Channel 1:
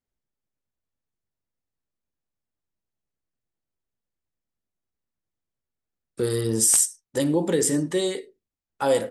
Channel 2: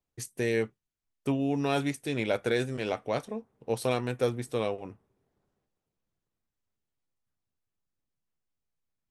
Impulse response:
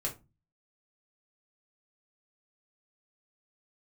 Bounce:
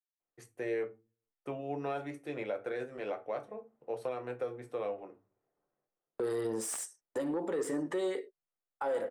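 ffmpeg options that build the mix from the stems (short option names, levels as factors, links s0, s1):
-filter_complex "[0:a]agate=range=0.0158:threshold=0.01:ratio=16:detection=peak,asoftclip=type=tanh:threshold=0.15,volume=1.26[s0];[1:a]adelay=200,volume=0.422,asplit=2[s1][s2];[s2]volume=0.668[s3];[2:a]atrim=start_sample=2205[s4];[s3][s4]afir=irnorm=-1:irlink=0[s5];[s0][s1][s5]amix=inputs=3:normalize=0,acrossover=split=320 2100:gain=0.141 1 0.158[s6][s7][s8];[s6][s7][s8]amix=inputs=3:normalize=0,alimiter=level_in=1.26:limit=0.0631:level=0:latency=1:release=239,volume=0.794"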